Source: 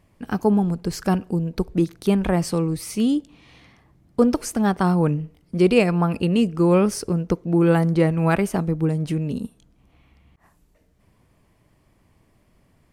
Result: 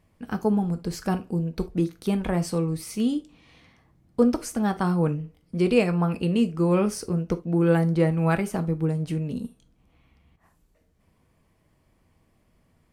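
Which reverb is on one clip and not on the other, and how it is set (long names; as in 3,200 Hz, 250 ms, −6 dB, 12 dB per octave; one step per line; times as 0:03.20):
reverb whose tail is shaped and stops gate 100 ms falling, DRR 8 dB
level −5 dB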